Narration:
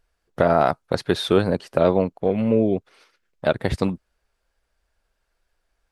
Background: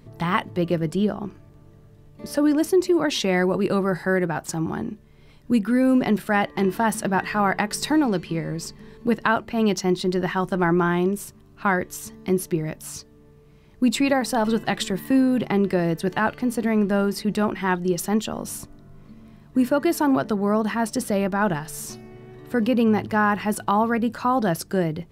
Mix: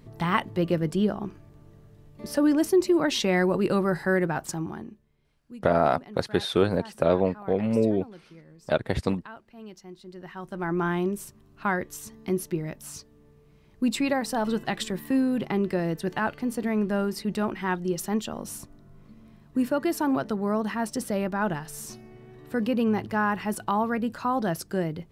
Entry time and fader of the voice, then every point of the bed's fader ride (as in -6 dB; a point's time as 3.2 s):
5.25 s, -4.0 dB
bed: 4.44 s -2 dB
5.4 s -23 dB
10.01 s -23 dB
10.86 s -5 dB